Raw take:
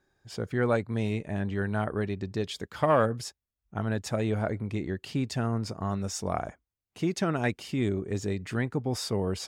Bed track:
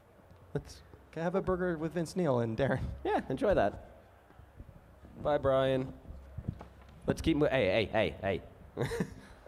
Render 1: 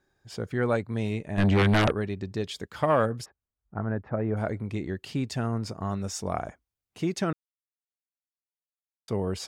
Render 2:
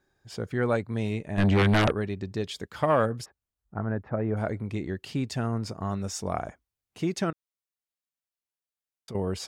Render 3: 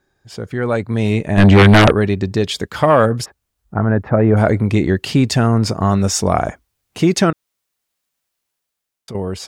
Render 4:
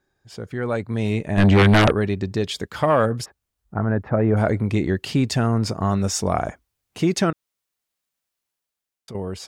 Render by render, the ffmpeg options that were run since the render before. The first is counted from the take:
-filter_complex "[0:a]asplit=3[s0][s1][s2];[s0]afade=t=out:st=1.37:d=0.02[s3];[s1]aeval=exprs='0.141*sin(PI/2*3.16*val(0)/0.141)':c=same,afade=t=in:st=1.37:d=0.02,afade=t=out:st=1.91:d=0.02[s4];[s2]afade=t=in:st=1.91:d=0.02[s5];[s3][s4][s5]amix=inputs=3:normalize=0,asplit=3[s6][s7][s8];[s6]afade=t=out:st=3.24:d=0.02[s9];[s7]lowpass=f=1700:w=0.5412,lowpass=f=1700:w=1.3066,afade=t=in:st=3.24:d=0.02,afade=t=out:st=4.36:d=0.02[s10];[s8]afade=t=in:st=4.36:d=0.02[s11];[s9][s10][s11]amix=inputs=3:normalize=0,asplit=3[s12][s13][s14];[s12]atrim=end=7.33,asetpts=PTS-STARTPTS,afade=t=out:st=7.326:d=0.004:c=hsin[s15];[s13]atrim=start=7.33:end=9.08,asetpts=PTS-STARTPTS,volume=0[s16];[s14]atrim=start=9.08,asetpts=PTS-STARTPTS,afade=t=in:d=0.004:c=hsin[s17];[s15][s16][s17]concat=n=3:v=0:a=1"
-filter_complex "[0:a]asettb=1/sr,asplit=3[s0][s1][s2];[s0]atrim=end=7.304[s3];[s1]atrim=start=7.3:end=9.15,asetpts=PTS-STARTPTS,afade=t=in:d=0.004:c=qsin,afade=t=out:st=1.846:d=0.004:c=qsin,acompressor=threshold=0.0158:ratio=6:attack=3.2:release=140:knee=1:detection=peak[s4];[s2]atrim=start=9.146[s5];[s3][s4]acrossfade=d=0.004:c1=hsin:c2=qsin[s6];[s6][s5]acrossfade=d=0.004:c1=qsin:c2=hsin"
-filter_complex "[0:a]asplit=2[s0][s1];[s1]alimiter=limit=0.0668:level=0:latency=1:release=16,volume=1[s2];[s0][s2]amix=inputs=2:normalize=0,dynaudnorm=f=170:g=11:m=4.47"
-af "volume=0.501"

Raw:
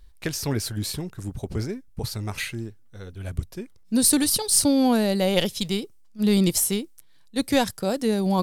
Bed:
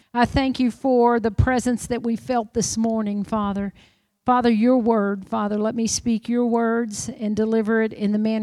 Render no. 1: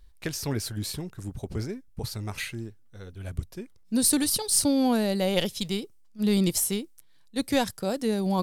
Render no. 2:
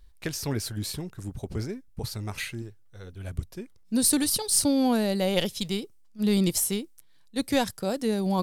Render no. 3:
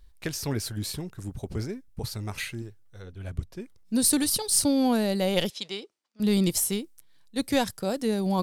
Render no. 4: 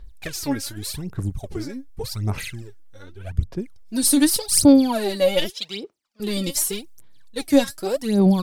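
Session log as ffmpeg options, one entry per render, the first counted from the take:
-af "volume=0.668"
-filter_complex "[0:a]asettb=1/sr,asplit=3[s0][s1][s2];[s0]atrim=end=2.624[s3];[s1]atrim=start=2.62:end=3.04,asetpts=PTS-STARTPTS,afade=t=in:d=0.004:c=qsin,afade=t=out:st=0.416:d=0.004:c=qsin,equalizer=f=240:w=3.7:g=-13[s4];[s2]atrim=start=3.036[s5];[s3][s4]acrossfade=d=0.004:c1=hsin:c2=qsin[s6];[s6][s5]acrossfade=d=0.004:c1=qsin:c2=hsin"
-filter_complex "[0:a]asettb=1/sr,asplit=3[s0][s1][s2];[s0]atrim=end=3.024[s3];[s1]atrim=start=3.02:end=3.6,asetpts=PTS-STARTPTS,afade=t=in:d=0.004:c=qsin,afade=t=out:st=0.576:d=0.004:c=qsin,highshelf=f=7200:g=-9.5[s4];[s2]atrim=start=3.596[s5];[s3][s4]acrossfade=d=0.004:c1=hsin:c2=qsin[s6];[s6][s5]acrossfade=d=0.004:c1=qsin:c2=hsin,asettb=1/sr,asplit=3[s7][s8][s9];[s7]atrim=end=5.504[s10];[s8]atrim=start=5.5:end=6.2,asetpts=PTS-STARTPTS,afade=t=in:d=0.004:c=qsin,afade=t=out:st=0.696:d=0.004:c=qsin,highpass=440,lowpass=5200[s11];[s9]atrim=start=6.196[s12];[s10][s11]acrossfade=d=0.004:c1=hsin:c2=qsin[s13];[s13][s12]acrossfade=d=0.004:c1=qsin:c2=hsin"
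-af "aphaser=in_gain=1:out_gain=1:delay=3.7:decay=0.77:speed=0.85:type=sinusoidal"

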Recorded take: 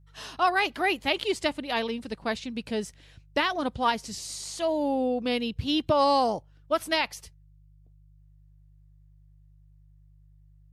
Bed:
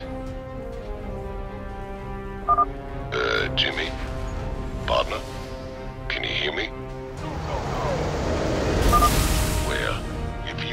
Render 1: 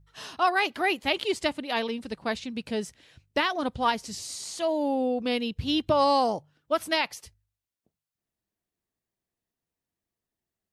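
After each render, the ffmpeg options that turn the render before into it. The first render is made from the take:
-af "bandreject=f=50:t=h:w=4,bandreject=f=100:t=h:w=4,bandreject=f=150:t=h:w=4"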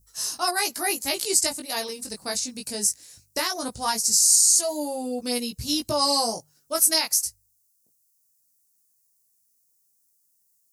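-af "flanger=delay=16.5:depth=3.4:speed=0.19,aexciter=amount=15.9:drive=6.5:freq=5000"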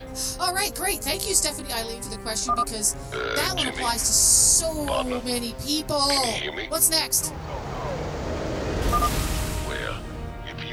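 -filter_complex "[1:a]volume=0.596[s0];[0:a][s0]amix=inputs=2:normalize=0"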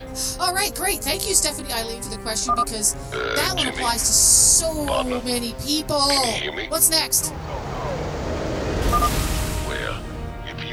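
-af "volume=1.41"

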